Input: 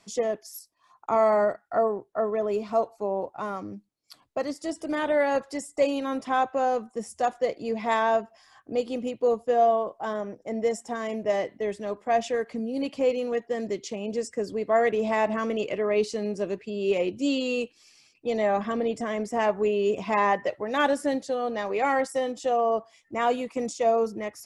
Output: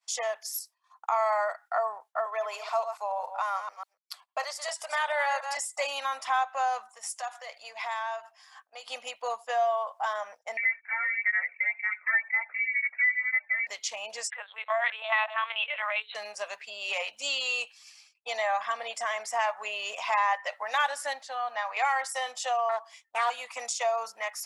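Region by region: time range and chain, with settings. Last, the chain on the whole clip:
2.26–5.57 s: chunks repeated in reverse 143 ms, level -9.5 dB + steep high-pass 380 Hz
6.93–8.90 s: bass shelf 300 Hz -8.5 dB + hum notches 50/100/150/200/250 Hz + compression 4:1, threshold -35 dBFS
10.57–13.67 s: frequency inversion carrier 2.5 kHz + cancelling through-zero flanger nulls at 2 Hz, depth 1.4 ms
14.30–16.15 s: high-pass 510 Hz 24 dB/octave + LPC vocoder at 8 kHz pitch kept + tilt EQ +4.5 dB/octave
21.13–21.77 s: peaking EQ 420 Hz -12 dB 0.51 oct + word length cut 12-bit, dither none + low-pass 1.8 kHz 6 dB/octave
22.69–23.30 s: high-pass 62 Hz + loudspeaker Doppler distortion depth 0.41 ms
whole clip: inverse Chebyshev high-pass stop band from 390 Hz, stop band 40 dB; expander -52 dBFS; compression 2:1, threshold -36 dBFS; trim +7.5 dB

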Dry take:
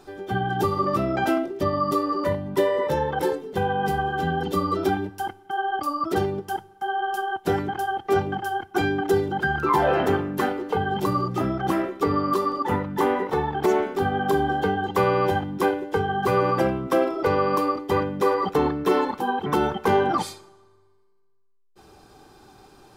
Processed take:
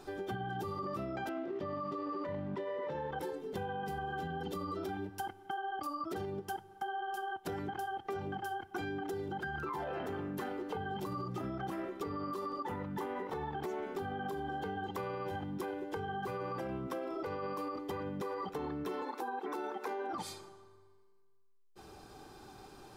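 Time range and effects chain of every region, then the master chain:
1.29–3.11 s: companding laws mixed up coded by A + band-pass 100–3300 Hz + level flattener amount 50%
19.02–20.13 s: steep high-pass 270 Hz + band-stop 3.1 kHz, Q 8.4 + upward compressor, threshold -26 dBFS
whole clip: peak limiter -19 dBFS; compression, threshold -34 dBFS; trim -2.5 dB

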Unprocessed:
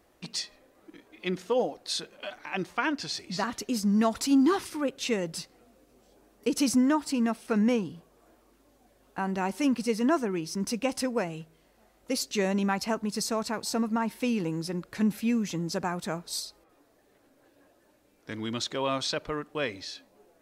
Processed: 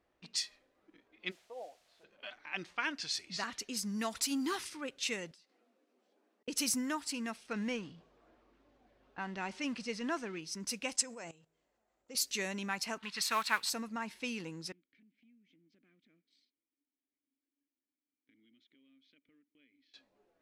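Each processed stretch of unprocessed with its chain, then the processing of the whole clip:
1.30–2.03 s: band-pass filter 660 Hz, Q 4.2 + added noise white -57 dBFS
5.31–6.48 s: steep high-pass 210 Hz + compression 16:1, threshold -50 dBFS + slow attack 637 ms
7.53–10.39 s: companding laws mixed up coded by mu + distance through air 84 m
10.96–12.15 s: peaking EQ 650 Hz +6 dB 2.4 oct + level held to a coarse grid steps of 17 dB + resonant low-pass 7.4 kHz, resonance Q 5.9
12.98–13.70 s: block-companded coder 5-bit + high-order bell 1.9 kHz +13.5 dB 2.5 oct + upward expansion, over -35 dBFS
14.72–19.94 s: companding laws mixed up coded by A + vowel filter i + compression 4:1, threshold -54 dBFS
whole clip: pre-emphasis filter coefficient 0.8; level-controlled noise filter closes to 2.4 kHz, open at -32.5 dBFS; dynamic bell 2.1 kHz, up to +7 dB, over -56 dBFS, Q 0.81

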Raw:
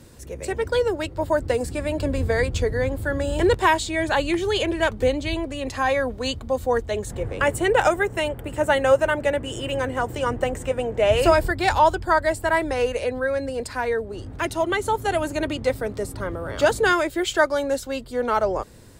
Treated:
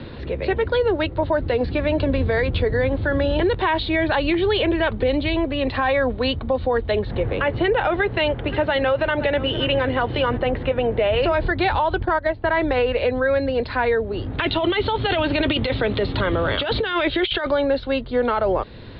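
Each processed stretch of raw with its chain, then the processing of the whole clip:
7.92–10.38 s: treble shelf 3.3 kHz +10 dB + delay 519 ms -22 dB
12.01–12.50 s: treble shelf 4.3 kHz -11 dB + transient shaper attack +12 dB, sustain -9 dB
14.38–17.51 s: peaking EQ 3.3 kHz +13 dB 1.2 oct + compressor with a negative ratio -25 dBFS
whole clip: steep low-pass 4.2 kHz 72 dB/octave; peak limiter -17.5 dBFS; three bands compressed up and down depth 40%; trim +5.5 dB

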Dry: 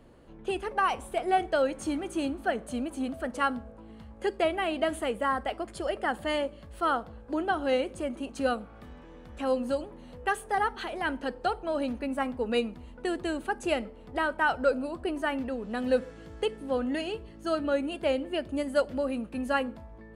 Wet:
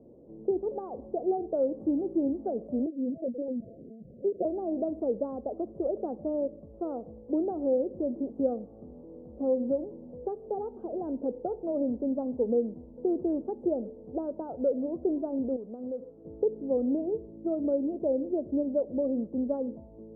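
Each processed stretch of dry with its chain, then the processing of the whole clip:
2.86–4.45 s: rippled Chebyshev low-pass 720 Hz, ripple 3 dB + doubling 21 ms -10 dB + LPC vocoder at 8 kHz pitch kept
15.56–16.25 s: tilt shelf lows -9 dB, about 1.5 kHz + compression 4:1, threshold -35 dBFS + band-stop 1.8 kHz, Q 5.1
whole clip: high-pass 380 Hz 6 dB/octave; compression 2:1, threshold -30 dBFS; inverse Chebyshev low-pass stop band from 1.8 kHz, stop band 60 dB; trim +8.5 dB

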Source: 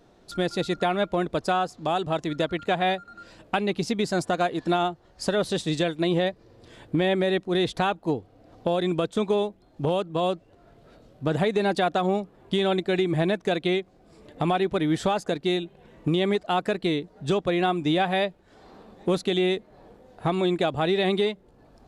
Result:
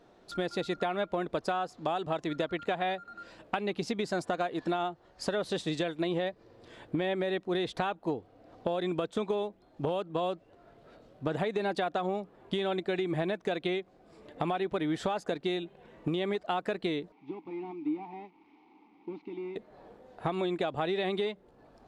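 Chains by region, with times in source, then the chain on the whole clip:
17.12–19.56 s: one-bit delta coder 32 kbps, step -40.5 dBFS + vowel filter u
whole clip: bass shelf 210 Hz -9.5 dB; compression, threshold -27 dBFS; treble shelf 4.6 kHz -9.5 dB

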